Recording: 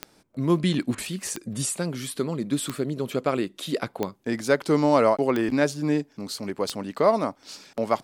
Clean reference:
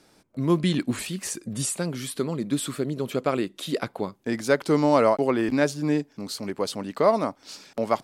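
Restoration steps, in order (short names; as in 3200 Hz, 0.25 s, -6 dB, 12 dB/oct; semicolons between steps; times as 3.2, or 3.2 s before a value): de-click; interpolate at 0.95, 29 ms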